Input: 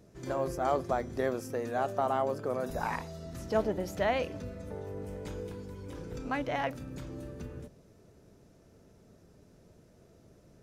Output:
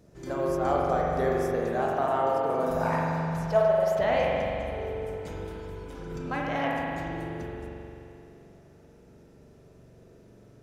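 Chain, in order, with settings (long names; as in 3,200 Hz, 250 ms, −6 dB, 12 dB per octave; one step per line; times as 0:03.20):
0:03.46–0:03.99: low shelf with overshoot 420 Hz −13.5 dB, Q 3
spring reverb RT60 2.8 s, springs 43 ms, chirp 65 ms, DRR −3.5 dB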